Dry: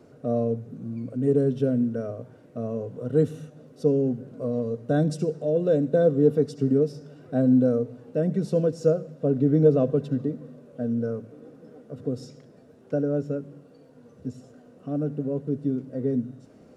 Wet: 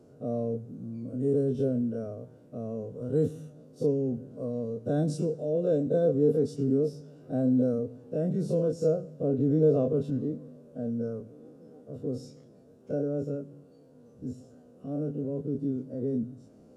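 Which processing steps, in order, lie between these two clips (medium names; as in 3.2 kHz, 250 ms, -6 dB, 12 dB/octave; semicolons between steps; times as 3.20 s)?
every event in the spectrogram widened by 60 ms; ten-band graphic EQ 1 kHz -3 dB, 2 kHz -10 dB, 4 kHz -3 dB; trim -6 dB; MP3 80 kbps 32 kHz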